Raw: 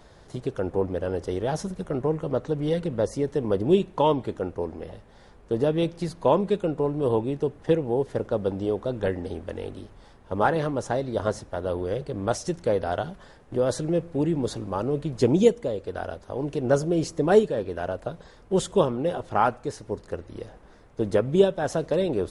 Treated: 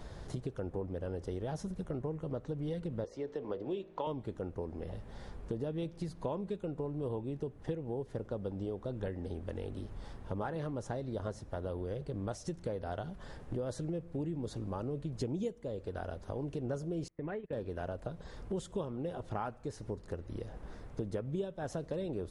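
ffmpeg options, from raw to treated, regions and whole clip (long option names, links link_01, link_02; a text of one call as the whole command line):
ffmpeg -i in.wav -filter_complex "[0:a]asettb=1/sr,asplit=3[link_01][link_02][link_03];[link_01]atrim=end=3.044[link_04];[link_02]atrim=start=3.04:end=4.07,asetpts=PTS-STARTPTS,afade=type=in:duration=0.004:curve=qsin,afade=type=out:start_time=1.026:duration=0.004:curve=qsin,acrossover=split=320 5800:gain=0.178 1 0.0708[link_05][link_06][link_07];[link_05][link_06][link_07]amix=inputs=3:normalize=0,bandreject=frequency=55.24:width_type=h:width=4,bandreject=frequency=110.48:width_type=h:width=4,bandreject=frequency=165.72:width_type=h:width=4,bandreject=frequency=220.96:width_type=h:width=4,bandreject=frequency=276.2:width_type=h:width=4,bandreject=frequency=331.44:width_type=h:width=4,bandreject=frequency=386.68:width_type=h:width=4,bandreject=frequency=441.92:width_type=h:width=4,bandreject=frequency=497.16:width_type=h:width=4,bandreject=frequency=552.4:width_type=h:width=4,bandreject=frequency=607.64:width_type=h:width=4,bandreject=frequency=662.88:width_type=h:width=4[link_08];[link_03]atrim=start=4.066[link_09];[link_04][link_08]acrossfade=duration=0.004:curve1=hsin:curve2=qsin[link_10];[link_10][link_09]acrossfade=duration=0.004:curve1=qsin:curve2=hsin,asettb=1/sr,asplit=3[link_11][link_12][link_13];[link_11]atrim=end=17.084[link_14];[link_12]atrim=start=17.08:end=17.53,asetpts=PTS-STARTPTS,afade=type=in:duration=0.004:curve=qsin,afade=type=out:start_time=0.446:duration=0.004:curve=qsin,lowpass=frequency=2100:width_type=q:width=4,acompressor=threshold=-30dB:ratio=6:attack=3.2:release=140:knee=1:detection=peak,agate=range=-28dB:threshold=-35dB:ratio=16:release=100:detection=peak[link_15];[link_13]atrim=start=17.526[link_16];[link_14][link_15]acrossfade=duration=0.004:curve1=hsin:curve2=qsin[link_17];[link_17][link_16]acrossfade=duration=0.004:curve1=qsin:curve2=hsin,lowshelf=frequency=220:gain=8.5,acompressor=threshold=-38dB:ratio=4" out.wav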